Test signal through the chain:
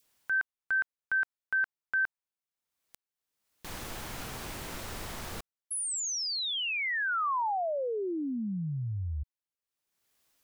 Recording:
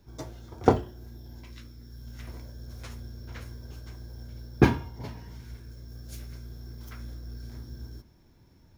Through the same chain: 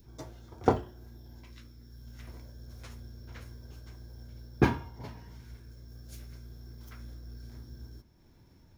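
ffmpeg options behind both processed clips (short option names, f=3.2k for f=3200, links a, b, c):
-af "adynamicequalizer=threshold=0.00794:dfrequency=1100:dqfactor=0.79:tfrequency=1100:tqfactor=0.79:attack=5:release=100:ratio=0.375:range=2:mode=boostabove:tftype=bell,acompressor=mode=upward:threshold=-47dB:ratio=2.5,volume=-5dB"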